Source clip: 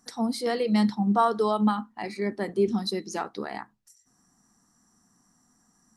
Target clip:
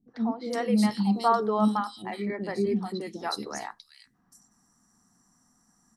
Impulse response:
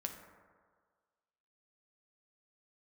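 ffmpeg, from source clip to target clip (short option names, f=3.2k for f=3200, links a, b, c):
-filter_complex "[0:a]acrossover=split=400|3100[a][b][c];[b]adelay=80[d];[c]adelay=450[e];[a][d][e]amix=inputs=3:normalize=0"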